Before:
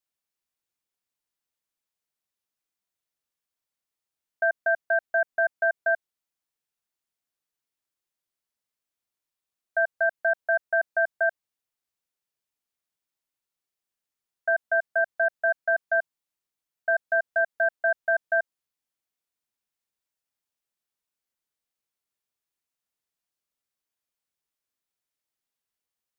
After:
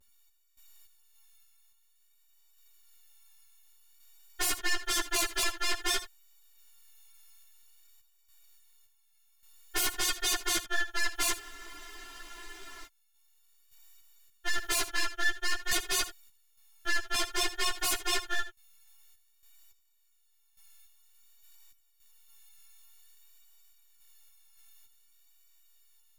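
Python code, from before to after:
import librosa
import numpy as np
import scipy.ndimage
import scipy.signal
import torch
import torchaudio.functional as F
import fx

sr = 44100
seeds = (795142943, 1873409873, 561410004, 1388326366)

p1 = fx.freq_snap(x, sr, grid_st=4)
p2 = scipy.signal.sosfilt(scipy.signal.cheby1(5, 1.0, 810.0, 'highpass', fs=sr, output='sos'), p1)
p3 = fx.vibrato(p2, sr, rate_hz=0.52, depth_cents=35.0)
p4 = np.maximum(p3, 0.0)
p5 = fx.tremolo_random(p4, sr, seeds[0], hz=3.5, depth_pct=85)
p6 = fx.fold_sine(p5, sr, drive_db=18, ceiling_db=-19.5)
p7 = p6 + fx.echo_single(p6, sr, ms=76, db=-14.0, dry=0)
p8 = fx.spec_freeze(p7, sr, seeds[1], at_s=11.4, hold_s=1.45)
y = fx.ensemble(p8, sr)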